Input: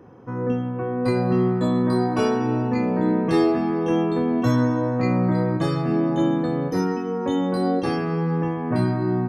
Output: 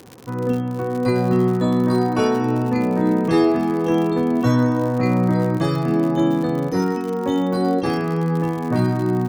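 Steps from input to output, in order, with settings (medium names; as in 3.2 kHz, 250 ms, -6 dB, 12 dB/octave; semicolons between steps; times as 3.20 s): crackle 90 per s -29 dBFS; trim +2.5 dB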